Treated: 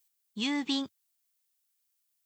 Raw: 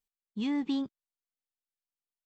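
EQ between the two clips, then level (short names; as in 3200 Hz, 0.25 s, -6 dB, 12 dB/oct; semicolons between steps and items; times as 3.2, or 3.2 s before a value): tilt +4 dB/oct; bell 92 Hz +7 dB 0.9 oct; low shelf 240 Hz +3 dB; +4.0 dB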